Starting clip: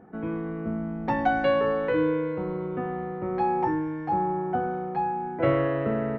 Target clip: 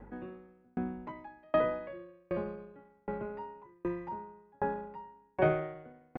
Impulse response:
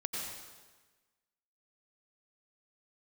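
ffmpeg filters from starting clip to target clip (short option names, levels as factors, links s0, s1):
-filter_complex "[0:a]acrossover=split=2500[s0][s1];[s1]acompressor=threshold=0.00158:ratio=4:attack=1:release=60[s2];[s0][s2]amix=inputs=2:normalize=0,asetrate=49501,aresample=44100,atempo=0.890899,aeval=exprs='val(0)+0.00316*(sin(2*PI*50*n/s)+sin(2*PI*2*50*n/s)/2+sin(2*PI*3*50*n/s)/3+sin(2*PI*4*50*n/s)/4+sin(2*PI*5*50*n/s)/5)':c=same,aeval=exprs='val(0)*pow(10,-40*if(lt(mod(1.3*n/s,1),2*abs(1.3)/1000),1-mod(1.3*n/s,1)/(2*abs(1.3)/1000),(mod(1.3*n/s,1)-2*abs(1.3)/1000)/(1-2*abs(1.3)/1000))/20)':c=same"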